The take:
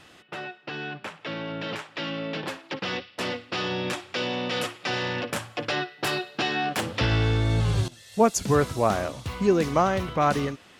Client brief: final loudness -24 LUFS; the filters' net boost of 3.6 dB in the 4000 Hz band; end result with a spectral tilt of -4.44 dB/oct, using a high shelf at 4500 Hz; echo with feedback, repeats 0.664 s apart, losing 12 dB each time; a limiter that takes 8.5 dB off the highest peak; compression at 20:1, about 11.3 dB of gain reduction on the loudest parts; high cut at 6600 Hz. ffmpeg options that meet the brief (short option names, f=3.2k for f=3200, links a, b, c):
-af "lowpass=6.6k,equalizer=f=4k:t=o:g=3,highshelf=f=4.5k:g=4.5,acompressor=threshold=-25dB:ratio=20,alimiter=limit=-22.5dB:level=0:latency=1,aecho=1:1:664|1328|1992:0.251|0.0628|0.0157,volume=8.5dB"